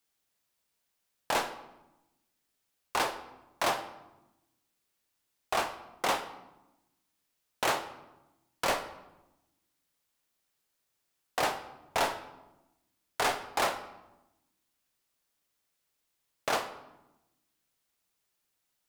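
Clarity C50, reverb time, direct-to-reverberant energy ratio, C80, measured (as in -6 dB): 11.0 dB, 1.0 s, 9.5 dB, 13.5 dB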